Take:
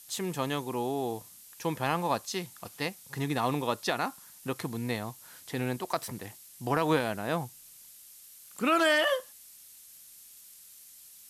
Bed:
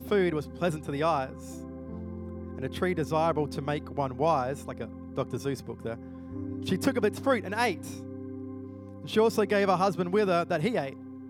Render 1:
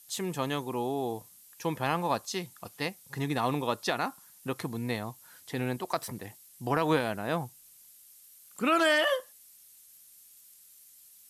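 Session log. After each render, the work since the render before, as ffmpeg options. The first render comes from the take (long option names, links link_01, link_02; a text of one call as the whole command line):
ffmpeg -i in.wav -af "afftdn=noise_reduction=6:noise_floor=-53" out.wav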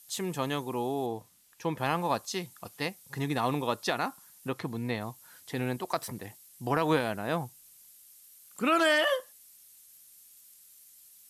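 ffmpeg -i in.wav -filter_complex "[0:a]asettb=1/sr,asplit=3[link_01][link_02][link_03];[link_01]atrim=end=1.064[link_04];[link_02]atrim=start=1.06:end=1.78,asetpts=PTS-STARTPTS,afade=type=in:duration=0.004:curve=qsin,afade=type=out:start_time=0.716:duration=0.004:curve=qsin,lowpass=frequency=3900:poles=1[link_05];[link_03]atrim=start=1.776[link_06];[link_04][link_05]acrossfade=duration=0.004:curve1=hsin:curve2=qsin[link_07];[link_07][link_06]acrossfade=duration=0.004:curve1=qsin:curve2=hsin,asettb=1/sr,asplit=3[link_08][link_09][link_10];[link_08]atrim=end=4.484[link_11];[link_09]atrim=start=4.48:end=5.01,asetpts=PTS-STARTPTS,afade=type=in:duration=0.004:curve=qsin,afade=type=out:start_time=0.526:duration=0.004:curve=qsin,acrossover=split=4800[link_12][link_13];[link_13]acompressor=threshold=-55dB:ratio=4:attack=1:release=60[link_14];[link_12][link_14]amix=inputs=2:normalize=0[link_15];[link_10]atrim=start=5.006[link_16];[link_11][link_15]acrossfade=duration=0.004:curve1=hsin:curve2=qsin[link_17];[link_17][link_16]acrossfade=duration=0.004:curve1=qsin:curve2=hsin" out.wav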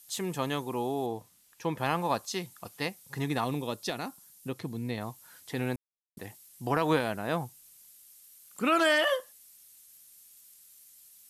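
ffmpeg -i in.wav -filter_complex "[0:a]asettb=1/sr,asplit=3[link_01][link_02][link_03];[link_01]atrim=end=3.444[link_04];[link_02]atrim=start=3.44:end=4.98,asetpts=PTS-STARTPTS,afade=type=in:duration=0.004:curve=qsin,afade=type=out:start_time=1.536:duration=0.004:curve=qsin,equalizer=frequency=1200:width_type=o:width=2.1:gain=-9[link_05];[link_03]atrim=start=4.976[link_06];[link_04][link_05]acrossfade=duration=0.004:curve1=hsin:curve2=qsin[link_07];[link_07][link_06]acrossfade=duration=0.004:curve1=qsin:curve2=hsin,asplit=3[link_08][link_09][link_10];[link_08]atrim=end=5.76,asetpts=PTS-STARTPTS,afade=type=out:start_time=5.756:duration=0.004:curve=hsin[link_11];[link_09]atrim=start=5.76:end=6.17,asetpts=PTS-STARTPTS,volume=0[link_12];[link_10]atrim=start=6.17,asetpts=PTS-STARTPTS,afade=type=in:duration=0.004:curve=hsin[link_13];[link_11][link_12][link_13]concat=n=3:v=0:a=1" out.wav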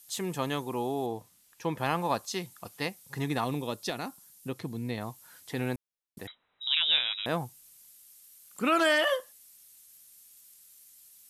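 ffmpeg -i in.wav -filter_complex "[0:a]asettb=1/sr,asplit=3[link_01][link_02][link_03];[link_01]atrim=end=6.274[link_04];[link_02]atrim=start=6.27:end=7.26,asetpts=PTS-STARTPTS,afade=type=in:duration=0.004:curve=qsin,afade=type=out:start_time=0.986:duration=0.004:curve=qsin,lowpass=frequency=3400:width_type=q:width=0.5098,lowpass=frequency=3400:width_type=q:width=0.6013,lowpass=frequency=3400:width_type=q:width=0.9,lowpass=frequency=3400:width_type=q:width=2.563,afreqshift=-4000[link_05];[link_03]atrim=start=7.256[link_06];[link_04][link_05]acrossfade=duration=0.004:curve1=hsin:curve2=qsin[link_07];[link_07][link_06]acrossfade=duration=0.004:curve1=qsin:curve2=hsin" out.wav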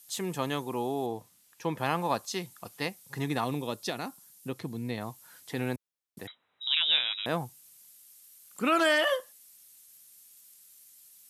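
ffmpeg -i in.wav -af "highpass=86" out.wav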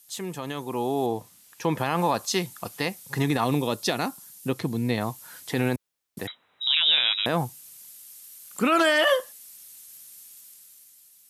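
ffmpeg -i in.wav -af "alimiter=limit=-21dB:level=0:latency=1:release=55,dynaudnorm=framelen=170:gausssize=11:maxgain=9dB" out.wav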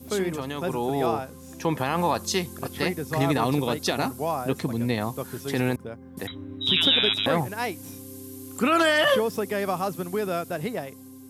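ffmpeg -i in.wav -i bed.wav -filter_complex "[1:a]volume=-2.5dB[link_01];[0:a][link_01]amix=inputs=2:normalize=0" out.wav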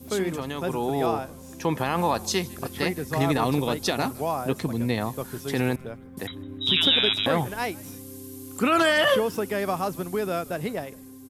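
ffmpeg -i in.wav -filter_complex "[0:a]asplit=4[link_01][link_02][link_03][link_04];[link_02]adelay=155,afreqshift=-120,volume=-23dB[link_05];[link_03]adelay=310,afreqshift=-240,volume=-30.7dB[link_06];[link_04]adelay=465,afreqshift=-360,volume=-38.5dB[link_07];[link_01][link_05][link_06][link_07]amix=inputs=4:normalize=0" out.wav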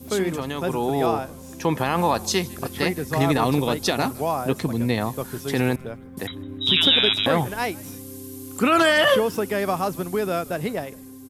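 ffmpeg -i in.wav -af "volume=3dB" out.wav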